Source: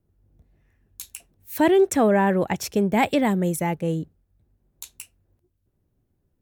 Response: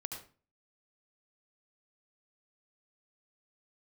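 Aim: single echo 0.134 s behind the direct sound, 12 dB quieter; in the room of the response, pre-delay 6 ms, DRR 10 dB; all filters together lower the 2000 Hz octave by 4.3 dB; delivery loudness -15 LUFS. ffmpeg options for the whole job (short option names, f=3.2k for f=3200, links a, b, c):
-filter_complex "[0:a]equalizer=f=2k:t=o:g=-5,aecho=1:1:134:0.251,asplit=2[a][b];[1:a]atrim=start_sample=2205,adelay=6[c];[b][c]afir=irnorm=-1:irlink=0,volume=-9dB[d];[a][d]amix=inputs=2:normalize=0,volume=6dB"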